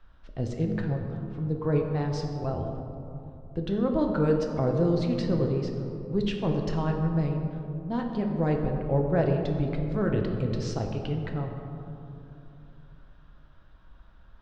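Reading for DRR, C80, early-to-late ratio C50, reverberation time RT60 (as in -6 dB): 2.0 dB, 5.0 dB, 4.5 dB, 2.8 s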